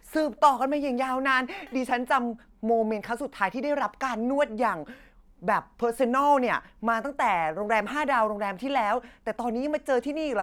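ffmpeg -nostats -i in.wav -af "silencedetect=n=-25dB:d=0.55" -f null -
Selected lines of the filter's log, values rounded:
silence_start: 4.77
silence_end: 5.48 | silence_duration: 0.71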